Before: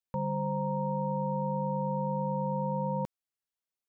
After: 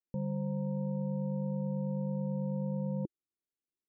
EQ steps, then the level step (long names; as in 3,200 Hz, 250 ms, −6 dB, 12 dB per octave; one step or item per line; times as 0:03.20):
low-pass with resonance 340 Hz, resonance Q 3.9
−3.0 dB